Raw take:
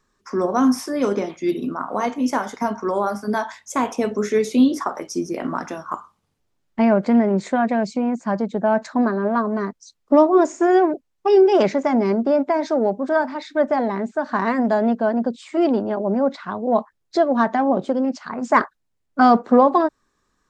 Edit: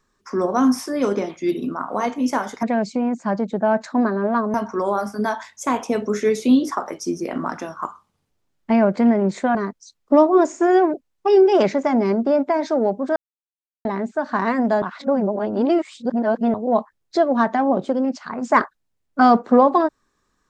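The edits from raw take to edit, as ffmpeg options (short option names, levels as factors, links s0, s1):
-filter_complex "[0:a]asplit=8[s0][s1][s2][s3][s4][s5][s6][s7];[s0]atrim=end=2.632[s8];[s1]atrim=start=7.638:end=9.552[s9];[s2]atrim=start=2.628:end=7.642[s10];[s3]atrim=start=9.548:end=13.16,asetpts=PTS-STARTPTS,afade=t=out:st=3.608:d=0.004:c=hsin[s11];[s4]atrim=start=13.16:end=13.85,asetpts=PTS-STARTPTS,volume=0[s12];[s5]atrim=start=13.85:end=14.822,asetpts=PTS-STARTPTS,afade=t=in:d=0.004:c=hsin[s13];[s6]atrim=start=14.818:end=16.542,asetpts=PTS-STARTPTS,areverse[s14];[s7]atrim=start=16.538[s15];[s8][s9]acrossfade=d=0.004:c1=hsin:c2=hsin[s16];[s16][s10]acrossfade=d=0.004:c1=hsin:c2=hsin[s17];[s11][s12][s13]concat=n=3:v=0:a=1[s18];[s17][s18]acrossfade=d=0.004:c1=hsin:c2=hsin[s19];[s19][s14]acrossfade=d=0.004:c1=hsin:c2=hsin[s20];[s20][s15]acrossfade=d=0.004:c1=hsin:c2=hsin"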